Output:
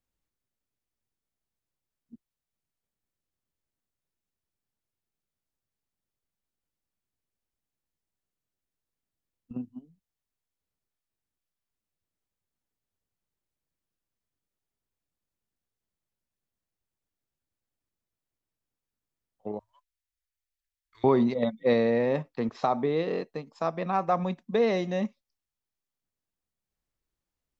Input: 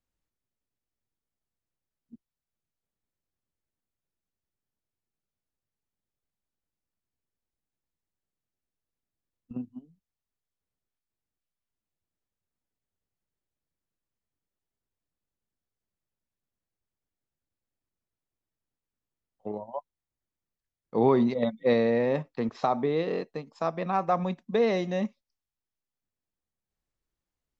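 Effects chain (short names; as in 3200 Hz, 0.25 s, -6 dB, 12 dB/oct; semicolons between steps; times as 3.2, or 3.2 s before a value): 19.59–21.04 inverse Chebyshev band-stop 130–850 Hz, stop band 40 dB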